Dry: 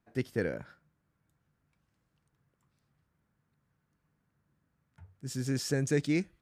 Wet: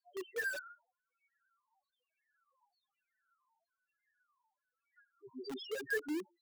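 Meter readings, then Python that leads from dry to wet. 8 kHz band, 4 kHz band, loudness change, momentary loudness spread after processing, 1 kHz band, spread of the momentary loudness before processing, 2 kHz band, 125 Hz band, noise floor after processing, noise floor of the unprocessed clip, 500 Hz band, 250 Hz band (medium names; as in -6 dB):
-12.5 dB, -6.0 dB, -7.5 dB, 14 LU, -2.0 dB, 12 LU, +2.0 dB, -36.5 dB, under -85 dBFS, -79 dBFS, -7.5 dB, -11.5 dB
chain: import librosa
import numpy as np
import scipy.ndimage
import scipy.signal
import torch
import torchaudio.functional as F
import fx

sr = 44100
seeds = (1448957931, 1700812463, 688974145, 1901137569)

p1 = scipy.signal.sosfilt(scipy.signal.cheby1(2, 1.0, [540.0, 6700.0], 'bandpass', fs=sr, output='sos'), x)
p2 = fx.filter_lfo_lowpass(p1, sr, shape='saw_down', hz=1.1, low_hz=740.0, high_hz=4600.0, q=5.5)
p3 = fx.spec_topn(p2, sr, count=1)
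p4 = (np.mod(10.0 ** (46.0 / 20.0) * p3 + 1.0, 2.0) - 1.0) / 10.0 ** (46.0 / 20.0)
p5 = p3 + F.gain(torch.from_numpy(p4), -4.5).numpy()
y = F.gain(torch.from_numpy(p5), 5.5).numpy()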